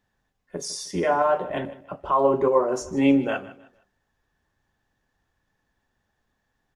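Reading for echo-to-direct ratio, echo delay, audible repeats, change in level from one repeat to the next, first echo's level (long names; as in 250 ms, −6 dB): −17.0 dB, 155 ms, 2, −10.0 dB, −17.5 dB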